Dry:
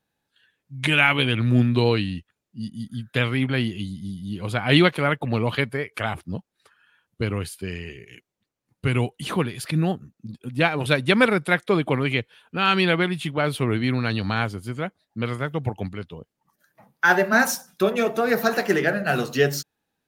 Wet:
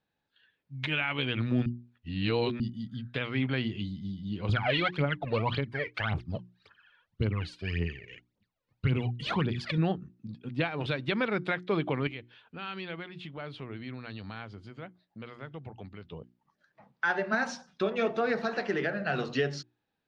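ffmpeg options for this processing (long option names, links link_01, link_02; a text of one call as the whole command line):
ffmpeg -i in.wav -filter_complex "[0:a]asettb=1/sr,asplit=3[link_01][link_02][link_03];[link_01]atrim=end=4.494[link_04];[link_02]atrim=start=4.49:end=9.78,asetpts=PTS-STARTPTS,afade=type=in:duration=0.004:curve=qsin,afade=type=out:start_time=5.286:duration=0.004:curve=qsin,aphaser=in_gain=1:out_gain=1:delay=2.2:decay=0.74:speed=1.8:type=triangular[link_05];[link_03]atrim=start=9.776[link_06];[link_04][link_05]acrossfade=duration=0.004:curve1=hsin:curve2=qsin[link_07];[link_07][link_06]acrossfade=duration=0.004:curve1=qsin:curve2=hsin,asettb=1/sr,asplit=3[link_08][link_09][link_10];[link_08]atrim=end=12.074[link_11];[link_09]atrim=start=12.07:end=16.05,asetpts=PTS-STARTPTS,afade=type=in:duration=0.004:curve=qsin,afade=type=out:start_time=3.976:duration=0.004:curve=qsin,acompressor=threshold=-43dB:ratio=2:attack=3.2:release=140:knee=1:detection=peak[link_12];[link_10]atrim=start=16.046[link_13];[link_11][link_12]acrossfade=duration=0.004:curve1=hsin:curve2=qsin[link_14];[link_14][link_13]acrossfade=duration=0.004:curve1=qsin:curve2=hsin,asplit=3[link_15][link_16][link_17];[link_15]atrim=end=1.662[link_18];[link_16]atrim=start=1.658:end=2.602,asetpts=PTS-STARTPTS,areverse[link_19];[link_17]atrim=start=2.598[link_20];[link_18][link_19]acrossfade=duration=0.004:curve1=hsin:curve2=hsin[link_21];[link_21][link_20]acrossfade=duration=0.004:curve1=hsin:curve2=hsin,lowpass=frequency=4800:width=0.5412,lowpass=frequency=4800:width=1.3066,bandreject=frequency=60:width_type=h:width=6,bandreject=frequency=120:width_type=h:width=6,bandreject=frequency=180:width_type=h:width=6,bandreject=frequency=240:width_type=h:width=6,bandreject=frequency=300:width_type=h:width=6,bandreject=frequency=360:width_type=h:width=6,alimiter=limit=-14dB:level=0:latency=1:release=258,volume=-4dB" out.wav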